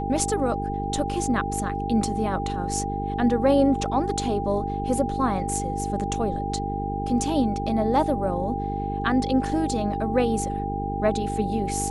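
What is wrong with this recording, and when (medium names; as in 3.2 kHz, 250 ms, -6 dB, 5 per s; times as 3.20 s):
buzz 50 Hz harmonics 9 -30 dBFS
whine 800 Hz -29 dBFS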